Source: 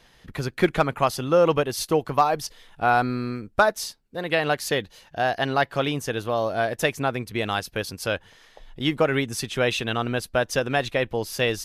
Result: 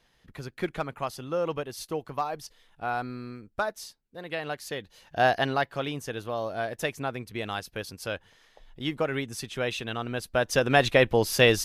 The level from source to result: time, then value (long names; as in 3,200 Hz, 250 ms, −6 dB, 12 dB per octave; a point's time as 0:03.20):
0:04.80 −10.5 dB
0:05.25 +2 dB
0:05.71 −7 dB
0:10.08 −7 dB
0:10.85 +4 dB